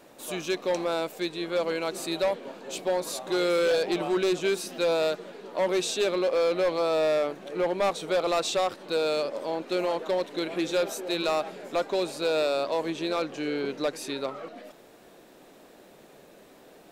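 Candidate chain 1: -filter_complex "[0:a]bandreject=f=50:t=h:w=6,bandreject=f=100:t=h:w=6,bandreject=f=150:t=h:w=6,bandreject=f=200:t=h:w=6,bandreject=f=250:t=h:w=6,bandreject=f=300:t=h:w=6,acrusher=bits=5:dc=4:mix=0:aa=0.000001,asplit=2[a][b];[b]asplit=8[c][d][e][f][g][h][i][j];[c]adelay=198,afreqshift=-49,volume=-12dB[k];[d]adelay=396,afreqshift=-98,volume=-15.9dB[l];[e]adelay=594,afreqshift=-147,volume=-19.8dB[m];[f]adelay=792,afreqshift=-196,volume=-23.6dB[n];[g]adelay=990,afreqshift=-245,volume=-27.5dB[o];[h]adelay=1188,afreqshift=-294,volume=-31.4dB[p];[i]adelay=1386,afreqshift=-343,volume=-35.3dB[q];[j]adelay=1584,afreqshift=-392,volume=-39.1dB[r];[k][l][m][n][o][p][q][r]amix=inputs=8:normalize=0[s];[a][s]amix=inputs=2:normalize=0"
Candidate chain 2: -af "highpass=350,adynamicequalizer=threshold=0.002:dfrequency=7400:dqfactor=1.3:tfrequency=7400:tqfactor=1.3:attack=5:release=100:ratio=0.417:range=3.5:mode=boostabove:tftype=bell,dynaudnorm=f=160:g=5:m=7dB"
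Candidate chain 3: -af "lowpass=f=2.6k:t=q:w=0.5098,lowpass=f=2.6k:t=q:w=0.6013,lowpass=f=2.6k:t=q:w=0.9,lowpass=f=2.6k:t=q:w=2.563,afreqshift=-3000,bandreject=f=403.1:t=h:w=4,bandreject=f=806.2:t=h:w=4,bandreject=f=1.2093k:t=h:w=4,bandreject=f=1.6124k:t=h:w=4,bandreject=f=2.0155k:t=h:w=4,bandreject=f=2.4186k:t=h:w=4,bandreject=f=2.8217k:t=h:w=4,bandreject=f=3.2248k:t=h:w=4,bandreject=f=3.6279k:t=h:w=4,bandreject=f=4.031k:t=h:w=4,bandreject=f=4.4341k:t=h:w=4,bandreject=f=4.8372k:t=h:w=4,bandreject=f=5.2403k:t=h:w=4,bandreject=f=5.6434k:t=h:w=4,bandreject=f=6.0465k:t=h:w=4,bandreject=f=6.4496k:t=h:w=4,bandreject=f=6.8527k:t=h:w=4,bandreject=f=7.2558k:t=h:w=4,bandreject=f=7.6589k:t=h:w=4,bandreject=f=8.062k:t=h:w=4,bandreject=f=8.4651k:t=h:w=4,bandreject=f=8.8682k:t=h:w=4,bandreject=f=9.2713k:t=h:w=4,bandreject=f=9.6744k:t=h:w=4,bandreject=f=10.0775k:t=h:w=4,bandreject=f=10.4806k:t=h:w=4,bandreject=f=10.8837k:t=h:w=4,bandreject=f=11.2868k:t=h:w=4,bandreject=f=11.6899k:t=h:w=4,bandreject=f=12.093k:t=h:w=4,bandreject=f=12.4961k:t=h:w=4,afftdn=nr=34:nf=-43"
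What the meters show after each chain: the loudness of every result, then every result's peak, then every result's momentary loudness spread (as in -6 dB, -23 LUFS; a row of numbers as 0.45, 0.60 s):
-26.5, -21.5, -25.0 LUFS; -13.5, -6.5, -14.5 dBFS; 9, 8, 8 LU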